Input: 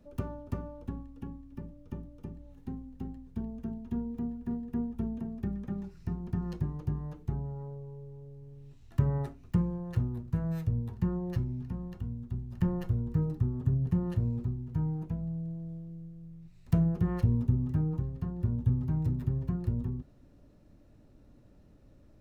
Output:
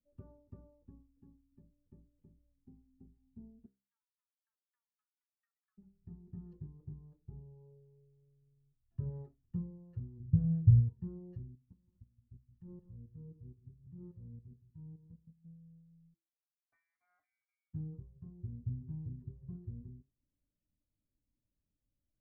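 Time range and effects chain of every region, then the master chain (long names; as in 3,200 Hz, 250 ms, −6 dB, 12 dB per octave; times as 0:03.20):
0:03.66–0:05.78: Butterworth high-pass 1,200 Hz + pitch modulation by a square or saw wave saw down 5.8 Hz, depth 160 cents
0:10.20–0:10.89: parametric band 130 Hz +15 dB 2 octaves + comb filter 2.6 ms, depth 42%
0:11.55–0:15.45: output level in coarse steps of 17 dB + notch filter 680 Hz, Q 5.5 + single-tap delay 171 ms −9.5 dB
0:16.14–0:17.74: high-pass filter 1,400 Hz + voice inversion scrambler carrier 2,500 Hz
whole clip: hum removal 66.18 Hz, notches 29; dynamic equaliser 420 Hz, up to +5 dB, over −52 dBFS, Q 2.1; every bin expanded away from the loudest bin 1.5 to 1; level −6.5 dB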